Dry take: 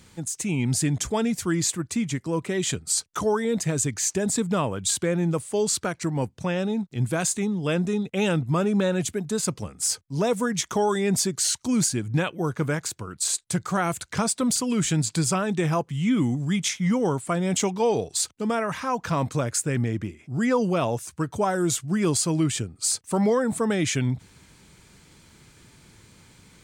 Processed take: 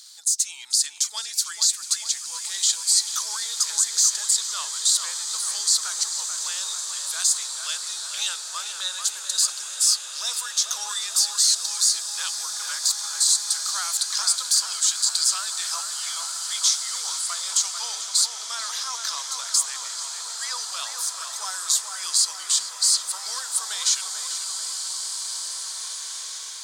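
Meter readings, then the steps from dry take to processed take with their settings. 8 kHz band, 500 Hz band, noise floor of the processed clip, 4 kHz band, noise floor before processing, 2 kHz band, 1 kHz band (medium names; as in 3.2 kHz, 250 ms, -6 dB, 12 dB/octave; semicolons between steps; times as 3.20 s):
+7.5 dB, under -25 dB, -36 dBFS, +10.5 dB, -57 dBFS, -3.5 dB, -6.5 dB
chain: high-pass 1.2 kHz 24 dB/octave; resonant high shelf 3.2 kHz +10.5 dB, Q 3; peak limiter -8 dBFS, peak gain reduction 9.5 dB; tape echo 440 ms, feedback 69%, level -4.5 dB, low-pass 2 kHz; swelling reverb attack 2490 ms, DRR 5.5 dB; trim -1 dB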